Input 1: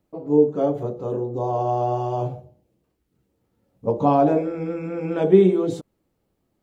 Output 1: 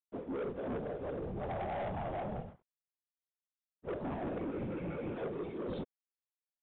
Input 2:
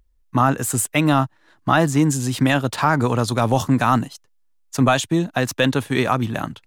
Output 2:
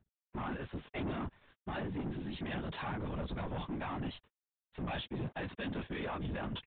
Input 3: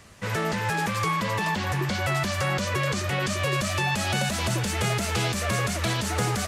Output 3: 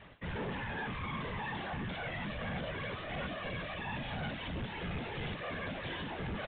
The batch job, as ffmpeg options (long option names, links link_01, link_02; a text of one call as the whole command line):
ffmpeg -i in.wav -af "bandreject=frequency=1300:width=8.9,acontrast=75,alimiter=limit=-6.5dB:level=0:latency=1,areverse,acompressor=threshold=-28dB:ratio=8,areverse,aecho=1:1:6.7:0.41,aeval=exprs='sgn(val(0))*max(abs(val(0))-0.00355,0)':channel_layout=same,flanger=delay=16:depth=4.4:speed=0.6,afftfilt=real='hypot(re,im)*cos(2*PI*random(0))':imag='hypot(re,im)*sin(2*PI*random(1))':win_size=512:overlap=0.75,asoftclip=type=tanh:threshold=-39dB,aresample=8000,aresample=44100,volume=5dB" out.wav